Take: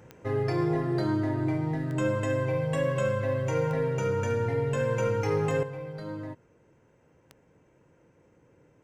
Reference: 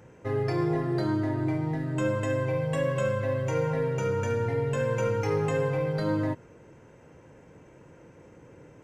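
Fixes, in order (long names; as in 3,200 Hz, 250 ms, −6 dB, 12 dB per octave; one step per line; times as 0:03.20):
click removal
level 0 dB, from 0:05.63 +10 dB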